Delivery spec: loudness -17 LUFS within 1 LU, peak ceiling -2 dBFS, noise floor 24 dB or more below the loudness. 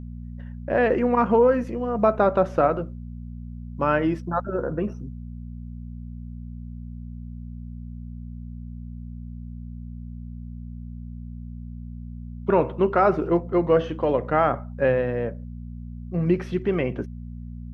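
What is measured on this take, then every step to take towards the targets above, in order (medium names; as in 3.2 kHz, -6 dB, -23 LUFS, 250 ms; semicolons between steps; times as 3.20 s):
hum 60 Hz; highest harmonic 240 Hz; hum level -34 dBFS; loudness -23.0 LUFS; peak level -6.0 dBFS; loudness target -17.0 LUFS
-> de-hum 60 Hz, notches 4; trim +6 dB; peak limiter -2 dBFS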